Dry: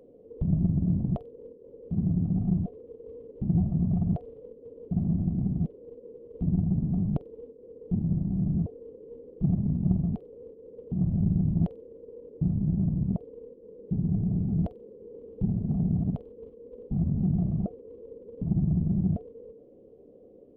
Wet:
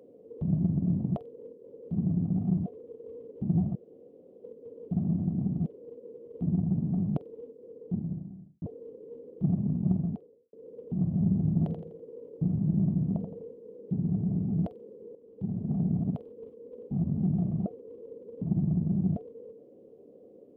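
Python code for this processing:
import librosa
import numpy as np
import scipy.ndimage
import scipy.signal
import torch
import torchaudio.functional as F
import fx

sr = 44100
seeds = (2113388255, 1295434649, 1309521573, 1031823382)

y = fx.studio_fade_out(x, sr, start_s=7.62, length_s=1.0)
y = fx.studio_fade_out(y, sr, start_s=9.92, length_s=0.61)
y = fx.echo_feedback(y, sr, ms=83, feedback_pct=39, wet_db=-6.5, at=(11.06, 13.77))
y = fx.edit(y, sr, fx.room_tone_fill(start_s=3.75, length_s=0.69),
    fx.fade_in_from(start_s=15.15, length_s=0.6, floor_db=-12.5), tone=tone)
y = scipy.signal.sosfilt(scipy.signal.butter(2, 130.0, 'highpass', fs=sr, output='sos'), y)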